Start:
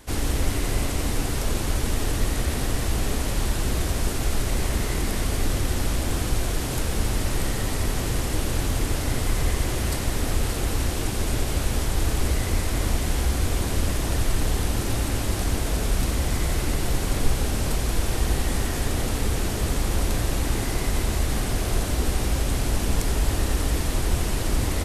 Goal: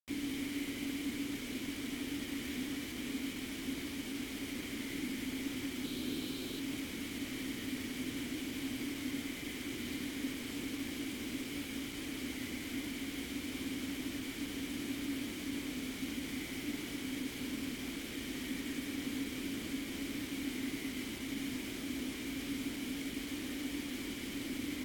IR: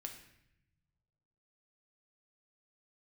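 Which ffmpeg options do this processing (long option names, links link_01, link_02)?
-filter_complex "[0:a]asettb=1/sr,asplit=3[link_01][link_02][link_03];[link_01]atrim=end=5.844[link_04];[link_02]atrim=start=5.84:end=6.6,asetpts=PTS-STARTPTS,afade=type=in:duration=0.004:curve=qsin,afade=type=out:start_time=0.756:duration=0.004:curve=qsin,equalizer=frequency=160:width_type=o:width=0.33:gain=5,equalizer=frequency=400:width_type=o:width=0.33:gain=7,equalizer=frequency=2000:width_type=o:width=0.33:gain=-9,equalizer=frequency=4000:width_type=o:width=0.33:gain=12,equalizer=frequency=6300:width_type=o:width=0.33:gain=-3,equalizer=frequency=10000:width_type=o:width=0.33:gain=-9[link_05];[link_03]atrim=start=6.596[link_06];[link_04][link_05]acrossfade=duration=0.004:curve1=hsin:curve2=qsin[link_07];[link_07][link_06]acrossfade=duration=0.004:curve1=qsin:curve2=hsin,acrossover=split=310|970[link_08][link_09][link_10];[link_08]alimiter=limit=-19.5dB:level=0:latency=1:release=274[link_11];[link_11][link_09][link_10]amix=inputs=3:normalize=0,asplit=3[link_12][link_13][link_14];[link_12]bandpass=frequency=270:width_type=q:width=8,volume=0dB[link_15];[link_13]bandpass=frequency=2290:width_type=q:width=8,volume=-6dB[link_16];[link_14]bandpass=frequency=3010:width_type=q:width=8,volume=-9dB[link_17];[link_15][link_16][link_17]amix=inputs=3:normalize=0,acrusher=bits=7:mix=0:aa=0.000001,volume=1.5dB" -ar 48000 -c:a aac -b:a 64k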